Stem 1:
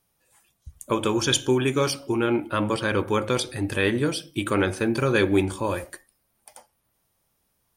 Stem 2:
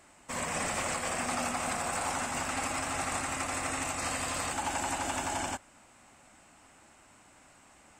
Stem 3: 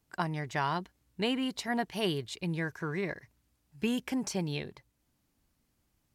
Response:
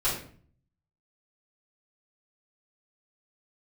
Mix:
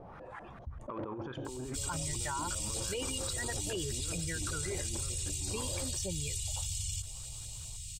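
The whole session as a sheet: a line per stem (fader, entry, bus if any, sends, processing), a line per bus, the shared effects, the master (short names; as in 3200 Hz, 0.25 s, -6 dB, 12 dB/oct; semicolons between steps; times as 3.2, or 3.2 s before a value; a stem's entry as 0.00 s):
-16.5 dB, 0.00 s, no bus, no send, negative-ratio compressor -30 dBFS, ratio -0.5; LFO low-pass saw up 5.1 Hz 560–1700 Hz; soft clip -23 dBFS, distortion -11 dB
-2.5 dB, 1.45 s, bus A, no send, elliptic band-stop 130–3500 Hz, stop band 40 dB; low shelf 110 Hz +7 dB
-3.5 dB, 1.70 s, bus A, no send, per-bin expansion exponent 2
bus A: 0.0 dB, comb 2.1 ms, depth 71%; limiter -28.5 dBFS, peak gain reduction 7 dB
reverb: off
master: fast leveller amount 70%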